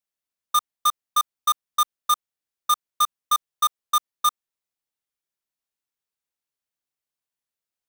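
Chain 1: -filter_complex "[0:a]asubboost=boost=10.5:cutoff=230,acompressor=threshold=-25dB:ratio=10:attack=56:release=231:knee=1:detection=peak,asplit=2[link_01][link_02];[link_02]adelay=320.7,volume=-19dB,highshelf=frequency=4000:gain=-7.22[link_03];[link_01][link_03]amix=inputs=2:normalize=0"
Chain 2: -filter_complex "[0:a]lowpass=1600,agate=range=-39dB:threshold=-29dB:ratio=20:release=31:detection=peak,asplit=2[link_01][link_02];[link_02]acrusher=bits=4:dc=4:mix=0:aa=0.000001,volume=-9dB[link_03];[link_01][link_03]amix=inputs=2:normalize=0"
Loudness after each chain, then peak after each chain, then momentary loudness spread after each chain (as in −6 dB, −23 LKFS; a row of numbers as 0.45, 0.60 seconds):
−28.0, −24.5 LKFS; −15.0, −12.0 dBFS; 3, 3 LU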